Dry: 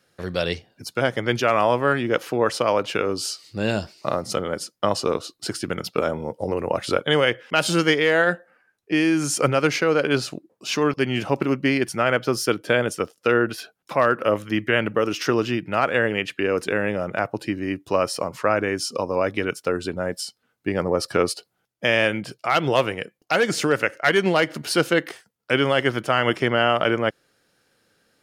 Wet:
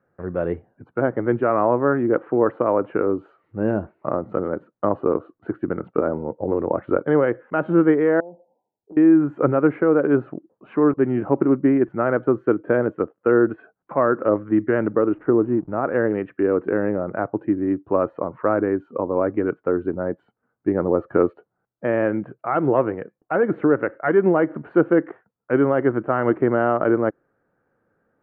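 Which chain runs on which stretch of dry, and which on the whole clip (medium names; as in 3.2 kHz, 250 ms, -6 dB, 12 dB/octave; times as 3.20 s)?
8.20–8.97 s: brick-wall FIR low-pass 1 kHz + tilt EQ +2 dB/octave + compression 8:1, threshold -36 dBFS
15.14–15.85 s: low-pass 1 kHz 6 dB/octave + hysteresis with a dead band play -38 dBFS
whole clip: inverse Chebyshev low-pass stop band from 4.8 kHz, stop band 60 dB; dynamic bell 320 Hz, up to +8 dB, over -36 dBFS, Q 1.6; trim -1 dB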